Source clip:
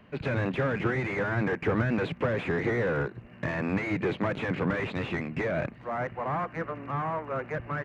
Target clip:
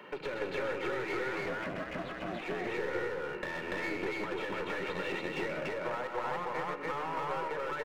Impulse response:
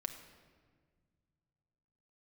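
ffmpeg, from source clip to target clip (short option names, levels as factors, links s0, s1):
-filter_complex "[0:a]highpass=f=200:w=0.5412,highpass=f=200:w=1.3066,equalizer=f=1100:w=1.5:g=3,aecho=1:1:2.2:0.69,acompressor=threshold=0.00891:ratio=6,aeval=exprs='clip(val(0),-1,0.00631)':c=same,asettb=1/sr,asplit=3[s0][s1][s2];[s0]atrim=end=1.354[s3];[s1]atrim=start=1.35:end=2.42,asetpts=PTS-STARTPTS,afade=t=in:d=0.004:c=qsin,afade=t=out:st=1.066:d=0.004:c=qsin,aeval=exprs='val(0)*sin(2*PI*180*n/s)':c=same[s4];[s2]atrim=start=2.416[s5];[s3][s4]acrossfade=d=0.004:c1=hsin:c2=qsin[s6];[s6][s5]acrossfade=d=0.004:c1=qsin:c2=hsin,aecho=1:1:128.3|288.6:0.398|1,asplit=2[s7][s8];[1:a]atrim=start_sample=2205,lowshelf=f=89:g=-10[s9];[s8][s9]afir=irnorm=-1:irlink=0,volume=1.33[s10];[s7][s10]amix=inputs=2:normalize=0"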